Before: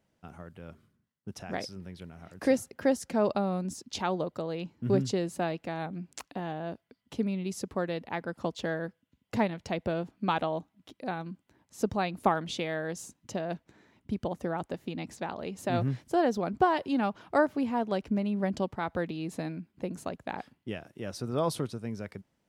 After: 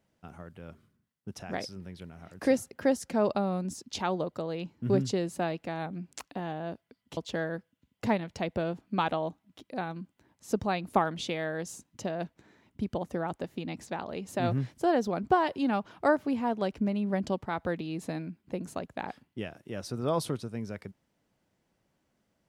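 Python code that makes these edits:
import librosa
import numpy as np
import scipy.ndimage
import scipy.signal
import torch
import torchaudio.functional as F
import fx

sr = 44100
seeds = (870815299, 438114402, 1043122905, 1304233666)

y = fx.edit(x, sr, fx.cut(start_s=7.17, length_s=1.3), tone=tone)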